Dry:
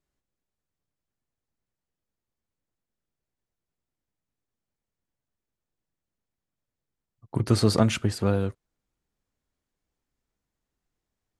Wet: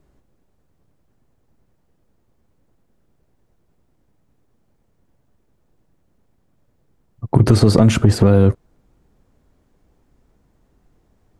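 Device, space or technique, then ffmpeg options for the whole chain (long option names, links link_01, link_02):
mastering chain: -filter_complex "[0:a]equalizer=frequency=910:width_type=o:width=2.4:gain=2.5,acrossover=split=1600|4300[link_01][link_02][link_03];[link_01]acompressor=threshold=-24dB:ratio=4[link_04];[link_02]acompressor=threshold=-40dB:ratio=4[link_05];[link_03]acompressor=threshold=-35dB:ratio=4[link_06];[link_04][link_05][link_06]amix=inputs=3:normalize=0,acompressor=threshold=-29dB:ratio=2,asoftclip=type=tanh:threshold=-19.5dB,tiltshelf=frequency=970:gain=7.5,alimiter=level_in=19.5dB:limit=-1dB:release=50:level=0:latency=1,volume=-1dB"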